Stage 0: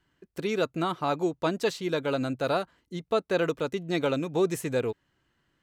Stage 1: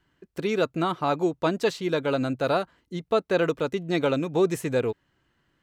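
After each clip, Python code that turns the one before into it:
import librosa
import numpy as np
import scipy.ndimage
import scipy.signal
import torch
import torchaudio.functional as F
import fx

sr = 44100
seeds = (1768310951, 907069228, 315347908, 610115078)

y = fx.high_shelf(x, sr, hz=4900.0, db=-4.5)
y = y * librosa.db_to_amplitude(3.0)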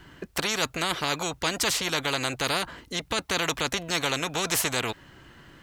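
y = fx.spectral_comp(x, sr, ratio=4.0)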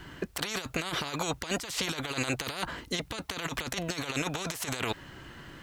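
y = fx.over_compress(x, sr, threshold_db=-31.0, ratio=-0.5)
y = y * librosa.db_to_amplitude(-1.0)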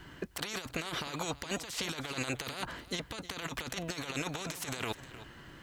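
y = x + 10.0 ** (-15.5 / 20.0) * np.pad(x, (int(310 * sr / 1000.0), 0))[:len(x)]
y = y * librosa.db_to_amplitude(-4.5)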